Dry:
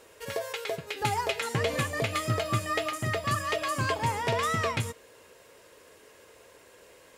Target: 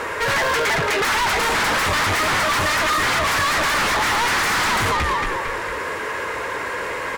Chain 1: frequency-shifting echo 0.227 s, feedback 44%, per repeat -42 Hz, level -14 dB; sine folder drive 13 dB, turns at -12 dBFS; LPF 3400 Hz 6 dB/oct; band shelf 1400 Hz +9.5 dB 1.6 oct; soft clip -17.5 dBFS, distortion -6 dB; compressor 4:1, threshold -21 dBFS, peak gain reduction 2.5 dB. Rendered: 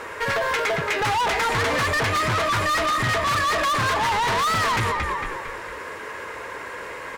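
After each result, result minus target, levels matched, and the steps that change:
sine folder: distortion -18 dB; compressor: peak gain reduction +2.5 dB
change: sine folder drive 22 dB, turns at -12 dBFS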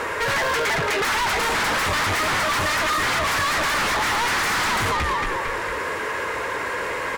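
compressor: peak gain reduction +2.5 dB
remove: compressor 4:1, threshold -21 dBFS, peak gain reduction 2.5 dB

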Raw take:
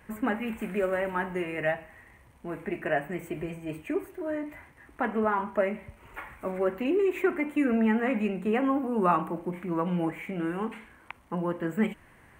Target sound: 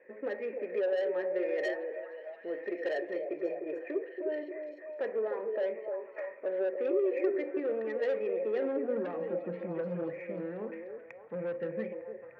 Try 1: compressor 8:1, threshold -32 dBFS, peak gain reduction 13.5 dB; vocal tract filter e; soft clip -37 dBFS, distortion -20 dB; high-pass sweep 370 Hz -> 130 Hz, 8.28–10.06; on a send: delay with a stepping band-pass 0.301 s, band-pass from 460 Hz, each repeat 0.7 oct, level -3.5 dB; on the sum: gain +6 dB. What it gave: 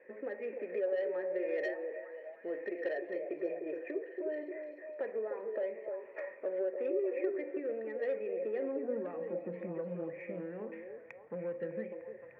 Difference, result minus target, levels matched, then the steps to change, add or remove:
compressor: peak gain reduction +6.5 dB
change: compressor 8:1, threshold -24.5 dBFS, peak gain reduction 7 dB

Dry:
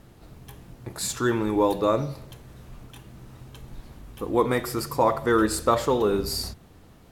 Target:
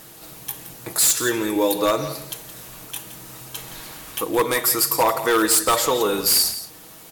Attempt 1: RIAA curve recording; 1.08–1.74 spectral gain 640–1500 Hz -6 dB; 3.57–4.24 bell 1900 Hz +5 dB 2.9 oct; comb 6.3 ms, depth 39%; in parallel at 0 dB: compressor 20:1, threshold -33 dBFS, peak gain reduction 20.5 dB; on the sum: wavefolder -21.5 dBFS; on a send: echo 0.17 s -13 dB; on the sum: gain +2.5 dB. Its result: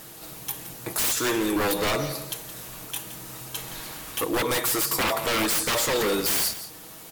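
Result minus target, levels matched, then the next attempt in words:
wavefolder: distortion +15 dB
RIAA curve recording; 1.08–1.74 spectral gain 640–1500 Hz -6 dB; 3.57–4.24 bell 1900 Hz +5 dB 2.9 oct; comb 6.3 ms, depth 39%; in parallel at 0 dB: compressor 20:1, threshold -33 dBFS, peak gain reduction 20.5 dB; on the sum: wavefolder -13 dBFS; on a send: echo 0.17 s -13 dB; on the sum: gain +2.5 dB

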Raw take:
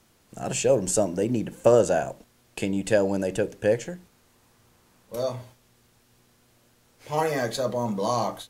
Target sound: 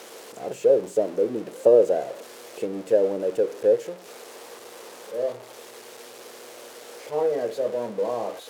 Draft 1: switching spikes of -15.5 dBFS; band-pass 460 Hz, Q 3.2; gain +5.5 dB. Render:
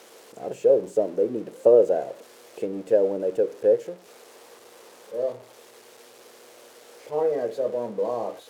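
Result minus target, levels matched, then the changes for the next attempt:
switching spikes: distortion -6 dB
change: switching spikes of -9 dBFS

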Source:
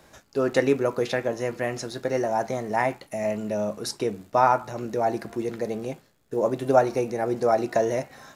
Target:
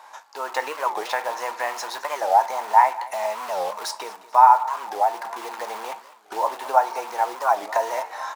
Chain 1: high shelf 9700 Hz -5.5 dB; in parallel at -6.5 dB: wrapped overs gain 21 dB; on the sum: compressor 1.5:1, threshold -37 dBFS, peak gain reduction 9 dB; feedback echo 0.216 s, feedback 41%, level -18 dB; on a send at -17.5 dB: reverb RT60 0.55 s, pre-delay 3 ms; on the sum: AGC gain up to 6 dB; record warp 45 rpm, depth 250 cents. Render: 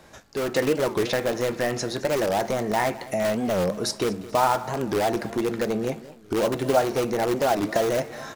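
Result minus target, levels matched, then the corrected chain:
wrapped overs: distortion -20 dB; 1000 Hz band -7.0 dB
high shelf 9700 Hz -5.5 dB; in parallel at -6.5 dB: wrapped overs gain 32.5 dB; on the sum: compressor 1.5:1, threshold -37 dBFS, peak gain reduction 9 dB; resonant high-pass 920 Hz, resonance Q 7.1; feedback echo 0.216 s, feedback 41%, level -18 dB; on a send at -17.5 dB: reverb RT60 0.55 s, pre-delay 3 ms; on the sum: AGC gain up to 6 dB; record warp 45 rpm, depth 250 cents

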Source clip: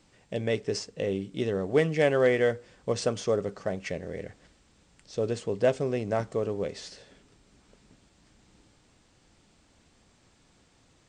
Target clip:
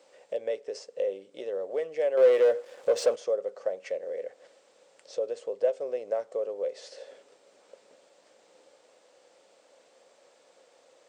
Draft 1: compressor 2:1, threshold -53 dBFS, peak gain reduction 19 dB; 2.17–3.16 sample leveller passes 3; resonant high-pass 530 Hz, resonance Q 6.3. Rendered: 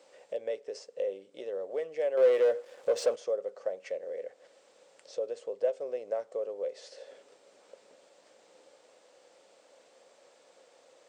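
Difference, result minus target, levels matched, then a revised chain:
compressor: peak gain reduction +3 dB
compressor 2:1, threshold -46.5 dBFS, peak gain reduction 15.5 dB; 2.17–3.16 sample leveller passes 3; resonant high-pass 530 Hz, resonance Q 6.3

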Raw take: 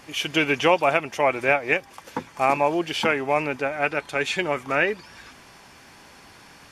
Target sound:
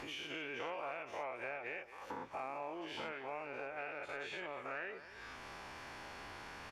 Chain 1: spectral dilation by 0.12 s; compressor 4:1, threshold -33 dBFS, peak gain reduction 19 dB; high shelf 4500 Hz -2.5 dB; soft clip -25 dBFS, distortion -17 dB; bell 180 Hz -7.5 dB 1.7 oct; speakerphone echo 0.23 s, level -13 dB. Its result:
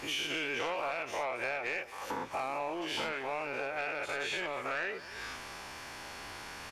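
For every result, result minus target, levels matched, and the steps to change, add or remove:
compressor: peak gain reduction -8 dB; 8000 Hz band +6.0 dB
change: compressor 4:1, threshold -44 dBFS, peak gain reduction 27.5 dB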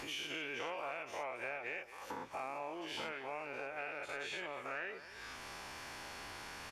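8000 Hz band +6.5 dB
change: high shelf 4500 Hz -14 dB

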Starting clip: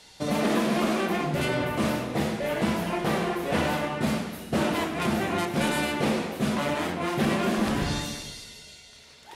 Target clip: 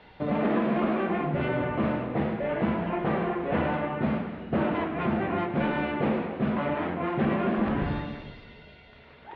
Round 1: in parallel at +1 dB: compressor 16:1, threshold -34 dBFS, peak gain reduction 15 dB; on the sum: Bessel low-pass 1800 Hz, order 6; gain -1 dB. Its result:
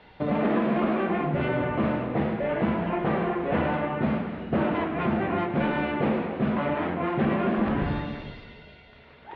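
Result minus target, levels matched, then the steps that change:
compressor: peak gain reduction -10.5 dB
change: compressor 16:1, threshold -45 dBFS, peak gain reduction 25 dB

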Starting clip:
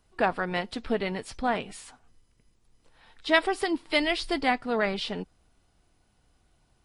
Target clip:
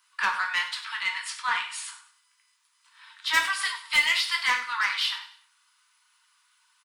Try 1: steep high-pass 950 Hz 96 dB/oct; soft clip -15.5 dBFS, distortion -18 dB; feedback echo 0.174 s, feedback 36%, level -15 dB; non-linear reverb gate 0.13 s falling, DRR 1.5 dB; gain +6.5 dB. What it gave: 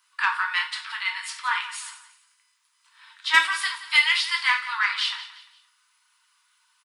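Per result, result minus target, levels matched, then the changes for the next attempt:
echo 75 ms late; soft clip: distortion -10 dB
change: feedback echo 99 ms, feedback 36%, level -15 dB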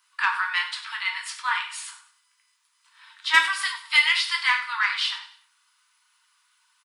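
soft clip: distortion -10 dB
change: soft clip -25.5 dBFS, distortion -8 dB

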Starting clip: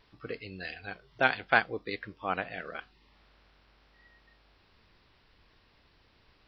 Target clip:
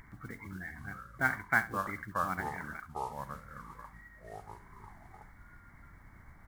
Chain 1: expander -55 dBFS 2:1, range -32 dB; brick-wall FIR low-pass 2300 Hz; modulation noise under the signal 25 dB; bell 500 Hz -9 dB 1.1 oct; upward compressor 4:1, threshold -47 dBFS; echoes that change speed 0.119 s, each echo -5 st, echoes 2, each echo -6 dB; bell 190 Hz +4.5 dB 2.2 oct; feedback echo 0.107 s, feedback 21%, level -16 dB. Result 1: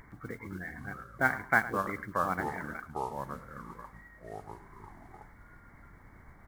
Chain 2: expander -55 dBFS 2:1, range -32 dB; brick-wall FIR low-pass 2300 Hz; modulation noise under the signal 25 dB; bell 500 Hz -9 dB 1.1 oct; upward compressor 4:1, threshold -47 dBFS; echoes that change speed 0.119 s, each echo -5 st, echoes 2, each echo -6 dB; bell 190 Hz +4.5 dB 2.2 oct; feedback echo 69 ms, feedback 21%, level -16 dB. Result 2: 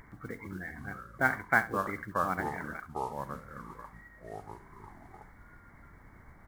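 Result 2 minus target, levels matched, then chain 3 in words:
500 Hz band +4.0 dB
expander -55 dBFS 2:1, range -32 dB; brick-wall FIR low-pass 2300 Hz; modulation noise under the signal 25 dB; bell 500 Hz -20.5 dB 1.1 oct; upward compressor 4:1, threshold -47 dBFS; echoes that change speed 0.119 s, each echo -5 st, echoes 2, each echo -6 dB; bell 190 Hz +4.5 dB 2.2 oct; feedback echo 69 ms, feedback 21%, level -16 dB

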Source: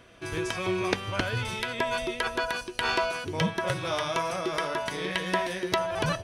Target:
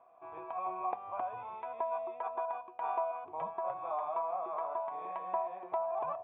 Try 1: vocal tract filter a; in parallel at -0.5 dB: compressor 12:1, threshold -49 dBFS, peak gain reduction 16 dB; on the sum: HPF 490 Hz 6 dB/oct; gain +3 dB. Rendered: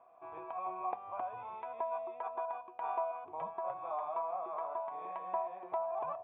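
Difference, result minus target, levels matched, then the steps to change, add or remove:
compressor: peak gain reduction +7.5 dB
change: compressor 12:1, threshold -41 dBFS, peak gain reduction 8.5 dB

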